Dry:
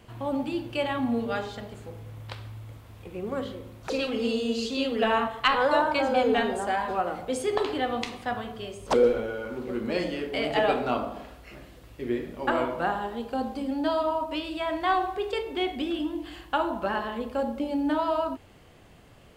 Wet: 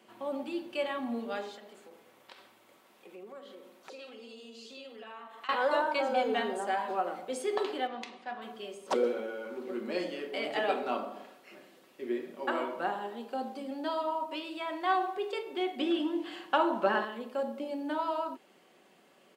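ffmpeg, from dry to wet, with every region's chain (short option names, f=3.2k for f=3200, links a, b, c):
-filter_complex "[0:a]asettb=1/sr,asplit=3[a][b][c];[a]atrim=end=1.564[d];[b]atrim=start=1.56:end=5.49,asetpts=PTS-STARTPTS,afade=t=in:d=0.004:c=qsin,afade=t=out:st=3.926:d=0.004:c=qsin,lowshelf=f=190:g=-11.5,acompressor=threshold=-40dB:ratio=4:attack=3.2:release=140:knee=1:detection=peak[e];[c]atrim=start=5.486[f];[d][e]acrossfade=d=0.004:c1=hsin:c2=qsin[g];[g][f]acrossfade=d=0.004:c1=qsin:c2=hsin,asettb=1/sr,asplit=3[h][i][j];[h]atrim=end=7.874[k];[i]atrim=start=7.87:end=8.42,asetpts=PTS-STARTPTS,afade=t=in:d=0.004:c=qsin,afade=t=out:st=0.546:d=0.004:c=qsin,lowpass=5.1k,aeval=exprs='(tanh(7.94*val(0)+0.7)-tanh(0.7))/7.94':c=same[l];[j]atrim=start=8.416[m];[k][l]acrossfade=d=0.004:c1=hsin:c2=qsin[n];[n][m]acrossfade=d=0.004:c1=qsin:c2=hsin,asettb=1/sr,asplit=3[o][p][q];[o]atrim=end=15.794[r];[p]atrim=start=15.79:end=17.05,asetpts=PTS-STARTPTS,afade=t=in:d=0.004:c=qsin,afade=t=out:st=1.256:d=0.004:c=qsin,highshelf=f=7.6k:g=-9.5,acontrast=63[s];[q]atrim=start=17.046[t];[r][s]acrossfade=d=0.004:c1=hsin:c2=qsin[u];[u][t]acrossfade=d=0.004:c1=qsin:c2=hsin,highpass=f=230:w=0.5412,highpass=f=230:w=1.3066,aecho=1:1:5.3:0.36,volume=-6dB"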